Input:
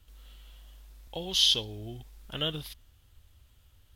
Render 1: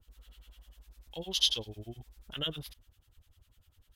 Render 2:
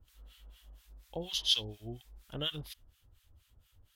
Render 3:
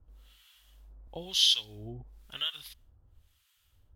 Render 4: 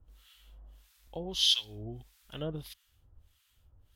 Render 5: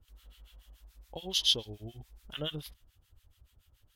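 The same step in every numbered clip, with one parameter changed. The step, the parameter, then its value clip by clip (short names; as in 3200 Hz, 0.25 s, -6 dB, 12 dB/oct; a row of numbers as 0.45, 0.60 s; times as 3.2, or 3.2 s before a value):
harmonic tremolo, rate: 10, 4.2, 1, 1.6, 7 Hz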